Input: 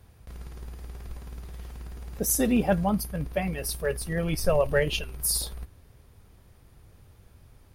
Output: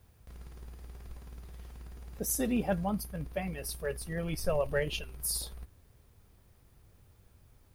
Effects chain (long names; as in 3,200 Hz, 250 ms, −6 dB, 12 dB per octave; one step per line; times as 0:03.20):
background noise blue −69 dBFS
level −7 dB